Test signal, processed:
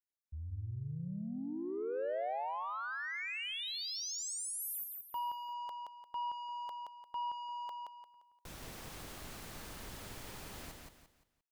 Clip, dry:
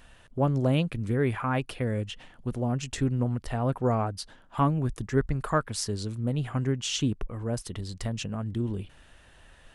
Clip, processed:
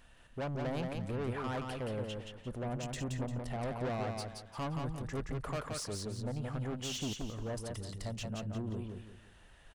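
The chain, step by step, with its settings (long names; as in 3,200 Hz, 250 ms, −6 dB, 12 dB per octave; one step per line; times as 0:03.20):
dynamic equaliser 580 Hz, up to +7 dB, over −44 dBFS, Q 1.4
soft clipping −27.5 dBFS
on a send: repeating echo 174 ms, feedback 33%, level −4 dB
on the sum: level −7 dB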